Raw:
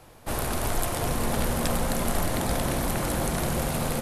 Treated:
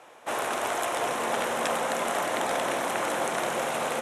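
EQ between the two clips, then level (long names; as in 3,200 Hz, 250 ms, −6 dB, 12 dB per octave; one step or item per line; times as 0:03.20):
band-pass filter 500–6,600 Hz
parametric band 4,600 Hz −12 dB 0.42 octaves
+4.5 dB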